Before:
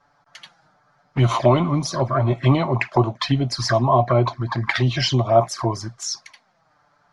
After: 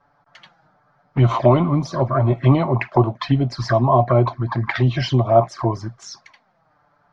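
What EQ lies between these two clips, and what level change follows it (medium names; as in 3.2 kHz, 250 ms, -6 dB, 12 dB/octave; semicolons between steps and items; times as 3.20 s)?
distance through air 93 m; treble shelf 2.1 kHz -8 dB; +2.5 dB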